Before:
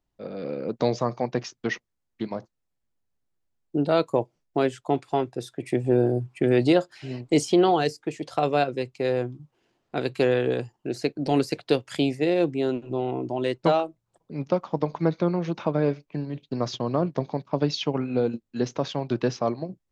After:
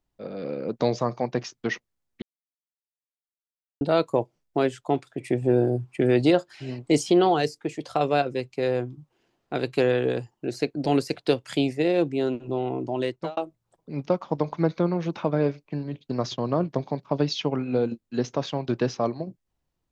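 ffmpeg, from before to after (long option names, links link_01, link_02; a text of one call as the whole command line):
ffmpeg -i in.wav -filter_complex "[0:a]asplit=5[link_01][link_02][link_03][link_04][link_05];[link_01]atrim=end=2.22,asetpts=PTS-STARTPTS,afade=type=out:start_time=2.216:duration=0.004:curve=hsin[link_06];[link_02]atrim=start=2.22:end=3.81,asetpts=PTS-STARTPTS,volume=0[link_07];[link_03]atrim=start=3.81:end=5.072,asetpts=PTS-STARTPTS,afade=type=in:duration=0.004:curve=hsin[link_08];[link_04]atrim=start=5.488:end=13.79,asetpts=PTS-STARTPTS,afade=type=out:start_time=7.942:duration=0.36[link_09];[link_05]atrim=start=13.79,asetpts=PTS-STARTPTS,afade=type=in:duration=0.004:curve=hsin[link_10];[link_06][link_07][link_08]concat=n=3:v=0:a=1[link_11];[link_09][link_10]concat=n=2:v=0:a=1[link_12];[link_11][link_12]acrossfade=duration=0.004:curve1=hsin:curve2=hsin" out.wav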